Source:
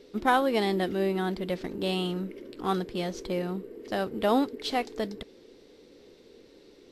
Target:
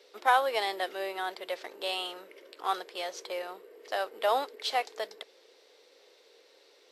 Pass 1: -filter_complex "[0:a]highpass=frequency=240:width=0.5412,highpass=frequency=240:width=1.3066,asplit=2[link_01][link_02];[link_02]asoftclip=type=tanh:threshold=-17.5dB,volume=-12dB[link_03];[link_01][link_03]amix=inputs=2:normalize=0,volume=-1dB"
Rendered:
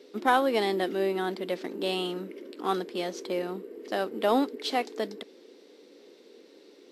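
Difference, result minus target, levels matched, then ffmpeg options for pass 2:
250 Hz band +15.5 dB
-filter_complex "[0:a]highpass=frequency=550:width=0.5412,highpass=frequency=550:width=1.3066,asplit=2[link_01][link_02];[link_02]asoftclip=type=tanh:threshold=-17.5dB,volume=-12dB[link_03];[link_01][link_03]amix=inputs=2:normalize=0,volume=-1dB"

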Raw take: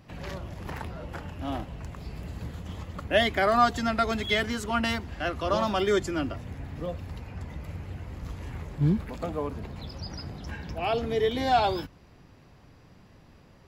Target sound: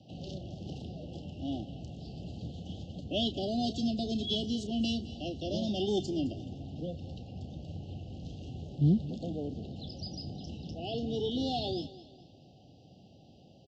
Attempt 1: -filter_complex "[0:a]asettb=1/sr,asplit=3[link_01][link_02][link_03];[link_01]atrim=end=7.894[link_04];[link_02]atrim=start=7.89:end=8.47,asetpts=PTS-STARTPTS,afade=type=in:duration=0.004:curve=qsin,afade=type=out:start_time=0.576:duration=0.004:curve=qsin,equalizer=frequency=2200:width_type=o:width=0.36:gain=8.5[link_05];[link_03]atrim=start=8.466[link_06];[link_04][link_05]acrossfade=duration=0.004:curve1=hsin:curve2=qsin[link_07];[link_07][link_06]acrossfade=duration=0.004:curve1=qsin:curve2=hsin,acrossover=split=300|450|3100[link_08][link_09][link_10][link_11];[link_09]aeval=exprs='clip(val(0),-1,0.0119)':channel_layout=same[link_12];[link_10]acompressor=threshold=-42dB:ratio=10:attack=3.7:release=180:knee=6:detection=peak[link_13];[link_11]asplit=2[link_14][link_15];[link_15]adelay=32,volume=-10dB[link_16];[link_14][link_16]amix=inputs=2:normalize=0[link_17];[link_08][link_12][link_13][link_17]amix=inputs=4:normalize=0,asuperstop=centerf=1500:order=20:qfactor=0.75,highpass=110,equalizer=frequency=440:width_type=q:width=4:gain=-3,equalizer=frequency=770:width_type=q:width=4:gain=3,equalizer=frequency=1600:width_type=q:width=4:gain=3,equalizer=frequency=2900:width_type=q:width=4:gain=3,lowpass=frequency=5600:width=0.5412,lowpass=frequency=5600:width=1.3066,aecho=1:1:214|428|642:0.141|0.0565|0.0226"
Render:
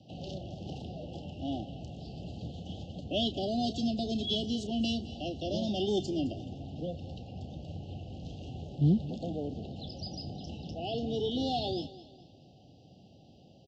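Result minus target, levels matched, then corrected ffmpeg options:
downward compressor: peak gain reduction −9.5 dB
-filter_complex "[0:a]asettb=1/sr,asplit=3[link_01][link_02][link_03];[link_01]atrim=end=7.894[link_04];[link_02]atrim=start=7.89:end=8.47,asetpts=PTS-STARTPTS,afade=type=in:duration=0.004:curve=qsin,afade=type=out:start_time=0.576:duration=0.004:curve=qsin,equalizer=frequency=2200:width_type=o:width=0.36:gain=8.5[link_05];[link_03]atrim=start=8.466[link_06];[link_04][link_05]acrossfade=duration=0.004:curve1=hsin:curve2=qsin[link_07];[link_07][link_06]acrossfade=duration=0.004:curve1=qsin:curve2=hsin,acrossover=split=300|450|3100[link_08][link_09][link_10][link_11];[link_09]aeval=exprs='clip(val(0),-1,0.0119)':channel_layout=same[link_12];[link_10]acompressor=threshold=-52.5dB:ratio=10:attack=3.7:release=180:knee=6:detection=peak[link_13];[link_11]asplit=2[link_14][link_15];[link_15]adelay=32,volume=-10dB[link_16];[link_14][link_16]amix=inputs=2:normalize=0[link_17];[link_08][link_12][link_13][link_17]amix=inputs=4:normalize=0,asuperstop=centerf=1500:order=20:qfactor=0.75,highpass=110,equalizer=frequency=440:width_type=q:width=4:gain=-3,equalizer=frequency=770:width_type=q:width=4:gain=3,equalizer=frequency=1600:width_type=q:width=4:gain=3,equalizer=frequency=2900:width_type=q:width=4:gain=3,lowpass=frequency=5600:width=0.5412,lowpass=frequency=5600:width=1.3066,aecho=1:1:214|428|642:0.141|0.0565|0.0226"

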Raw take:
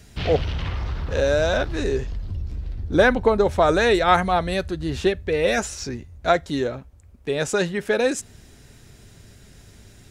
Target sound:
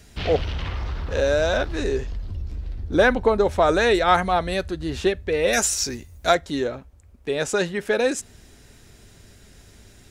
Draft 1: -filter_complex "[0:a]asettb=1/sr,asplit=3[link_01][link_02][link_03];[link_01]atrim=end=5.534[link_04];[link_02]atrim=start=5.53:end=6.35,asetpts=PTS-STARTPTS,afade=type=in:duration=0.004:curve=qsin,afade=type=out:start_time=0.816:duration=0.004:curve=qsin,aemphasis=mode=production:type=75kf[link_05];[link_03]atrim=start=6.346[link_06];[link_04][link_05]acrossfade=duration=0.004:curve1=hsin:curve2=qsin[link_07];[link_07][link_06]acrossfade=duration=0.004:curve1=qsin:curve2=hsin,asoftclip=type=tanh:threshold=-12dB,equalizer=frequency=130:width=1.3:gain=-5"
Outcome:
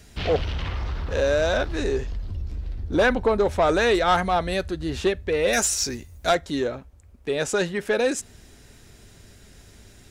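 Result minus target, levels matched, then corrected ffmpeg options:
soft clipping: distortion +14 dB
-filter_complex "[0:a]asettb=1/sr,asplit=3[link_01][link_02][link_03];[link_01]atrim=end=5.534[link_04];[link_02]atrim=start=5.53:end=6.35,asetpts=PTS-STARTPTS,afade=type=in:duration=0.004:curve=qsin,afade=type=out:start_time=0.816:duration=0.004:curve=qsin,aemphasis=mode=production:type=75kf[link_05];[link_03]atrim=start=6.346[link_06];[link_04][link_05]acrossfade=duration=0.004:curve1=hsin:curve2=qsin[link_07];[link_07][link_06]acrossfade=duration=0.004:curve1=qsin:curve2=hsin,asoftclip=type=tanh:threshold=-2.5dB,equalizer=frequency=130:width=1.3:gain=-5"

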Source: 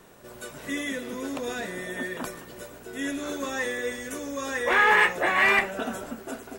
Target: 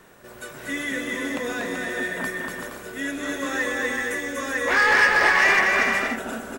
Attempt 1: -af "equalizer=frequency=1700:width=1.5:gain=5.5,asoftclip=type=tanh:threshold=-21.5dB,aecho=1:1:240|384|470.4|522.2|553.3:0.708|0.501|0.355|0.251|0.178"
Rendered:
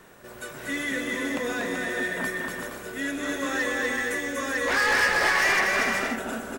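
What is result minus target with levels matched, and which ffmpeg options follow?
soft clipping: distortion +7 dB
-af "equalizer=frequency=1700:width=1.5:gain=5.5,asoftclip=type=tanh:threshold=-14dB,aecho=1:1:240|384|470.4|522.2|553.3:0.708|0.501|0.355|0.251|0.178"

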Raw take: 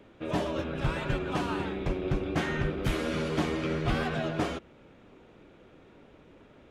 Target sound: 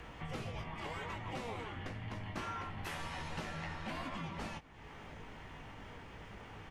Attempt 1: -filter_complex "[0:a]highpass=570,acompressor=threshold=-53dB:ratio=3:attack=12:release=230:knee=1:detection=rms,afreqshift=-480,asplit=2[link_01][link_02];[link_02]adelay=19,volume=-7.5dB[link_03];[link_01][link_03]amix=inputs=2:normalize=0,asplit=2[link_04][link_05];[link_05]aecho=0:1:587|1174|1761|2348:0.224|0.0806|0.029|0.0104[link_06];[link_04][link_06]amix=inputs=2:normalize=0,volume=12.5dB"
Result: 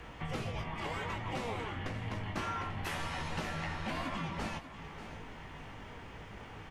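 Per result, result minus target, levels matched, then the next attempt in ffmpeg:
echo-to-direct +12 dB; downward compressor: peak gain reduction −4.5 dB
-filter_complex "[0:a]highpass=570,acompressor=threshold=-53dB:ratio=3:attack=12:release=230:knee=1:detection=rms,afreqshift=-480,asplit=2[link_01][link_02];[link_02]adelay=19,volume=-7.5dB[link_03];[link_01][link_03]amix=inputs=2:normalize=0,asplit=2[link_04][link_05];[link_05]aecho=0:1:587|1174:0.0562|0.0202[link_06];[link_04][link_06]amix=inputs=2:normalize=0,volume=12.5dB"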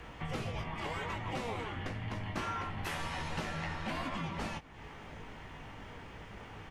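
downward compressor: peak gain reduction −4.5 dB
-filter_complex "[0:a]highpass=570,acompressor=threshold=-59.5dB:ratio=3:attack=12:release=230:knee=1:detection=rms,afreqshift=-480,asplit=2[link_01][link_02];[link_02]adelay=19,volume=-7.5dB[link_03];[link_01][link_03]amix=inputs=2:normalize=0,asplit=2[link_04][link_05];[link_05]aecho=0:1:587|1174:0.0562|0.0202[link_06];[link_04][link_06]amix=inputs=2:normalize=0,volume=12.5dB"

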